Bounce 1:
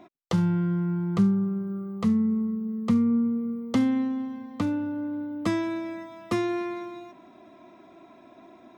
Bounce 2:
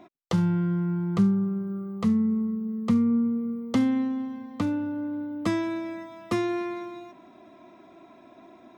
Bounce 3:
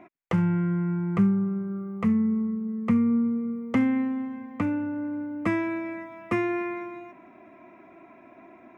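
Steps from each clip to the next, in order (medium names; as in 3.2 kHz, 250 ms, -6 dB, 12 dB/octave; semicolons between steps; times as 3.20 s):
no audible change
resonant high shelf 3 kHz -9 dB, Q 3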